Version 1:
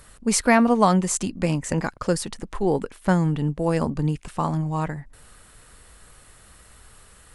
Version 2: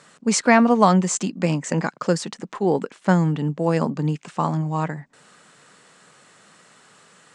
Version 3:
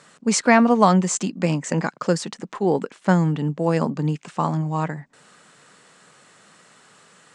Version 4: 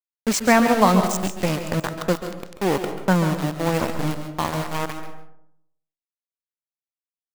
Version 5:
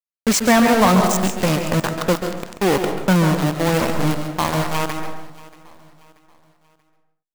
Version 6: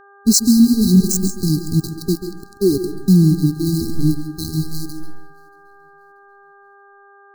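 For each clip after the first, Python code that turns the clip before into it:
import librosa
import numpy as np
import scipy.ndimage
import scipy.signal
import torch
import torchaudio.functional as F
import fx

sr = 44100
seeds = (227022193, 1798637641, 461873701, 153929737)

y1 = scipy.signal.sosfilt(scipy.signal.ellip(3, 1.0, 40, [160.0, 7400.0], 'bandpass', fs=sr, output='sos'), x)
y1 = y1 * librosa.db_to_amplitude(2.5)
y2 = y1
y3 = np.where(np.abs(y2) >= 10.0 ** (-20.0 / 20.0), y2, 0.0)
y3 = y3 + 10.0 ** (-11.0 / 20.0) * np.pad(y3, (int(137 * sr / 1000.0), 0))[:len(y3)]
y3 = fx.rev_freeverb(y3, sr, rt60_s=0.76, hf_ratio=0.4, predelay_ms=110, drr_db=9.5)
y3 = y3 * librosa.db_to_amplitude(-1.0)
y4 = fx.leveller(y3, sr, passes=3)
y4 = fx.echo_feedback(y4, sr, ms=633, feedback_pct=40, wet_db=-21.0)
y4 = y4 * librosa.db_to_amplitude(-5.0)
y5 = fx.bin_expand(y4, sr, power=1.5)
y5 = fx.brickwall_bandstop(y5, sr, low_hz=420.0, high_hz=3900.0)
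y5 = fx.dmg_buzz(y5, sr, base_hz=400.0, harmonics=4, level_db=-54.0, tilt_db=0, odd_only=False)
y5 = y5 * librosa.db_to_amplitude(6.5)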